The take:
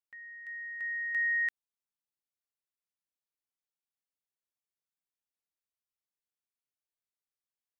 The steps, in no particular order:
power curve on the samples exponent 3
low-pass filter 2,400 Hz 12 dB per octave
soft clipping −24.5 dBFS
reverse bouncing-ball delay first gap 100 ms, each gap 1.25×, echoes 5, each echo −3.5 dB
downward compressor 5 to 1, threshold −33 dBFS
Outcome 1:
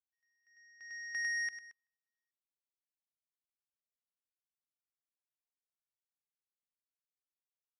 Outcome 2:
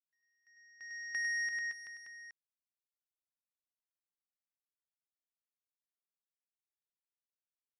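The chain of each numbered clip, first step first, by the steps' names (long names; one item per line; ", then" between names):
low-pass filter, then soft clipping, then reverse bouncing-ball delay, then power curve on the samples, then downward compressor
low-pass filter, then soft clipping, then power curve on the samples, then reverse bouncing-ball delay, then downward compressor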